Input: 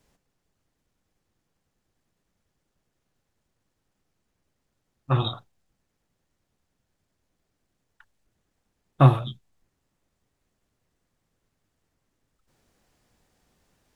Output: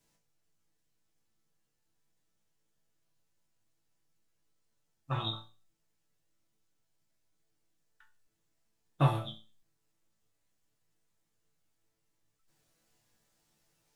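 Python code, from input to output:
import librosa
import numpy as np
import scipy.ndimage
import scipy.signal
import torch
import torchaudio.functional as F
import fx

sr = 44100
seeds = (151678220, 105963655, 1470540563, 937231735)

y = fx.high_shelf(x, sr, hz=3000.0, db=9.0)
y = fx.resonator_bank(y, sr, root=45, chord='sus4', decay_s=0.34)
y = y * 10.0 ** (5.0 / 20.0)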